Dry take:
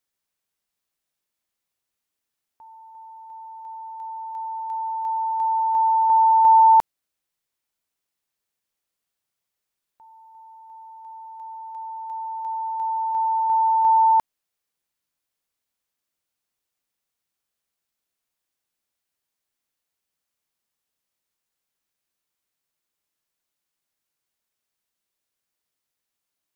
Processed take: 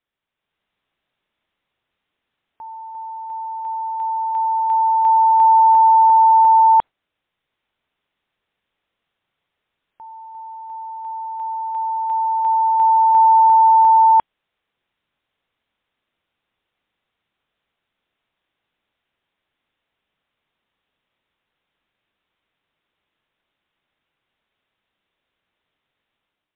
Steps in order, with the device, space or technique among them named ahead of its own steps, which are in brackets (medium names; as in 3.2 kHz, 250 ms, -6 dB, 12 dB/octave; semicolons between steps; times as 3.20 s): low-bitrate web radio (level rider gain up to 8 dB; peak limiter -11.5 dBFS, peak gain reduction 8.5 dB; trim +4 dB; MP3 40 kbps 8 kHz)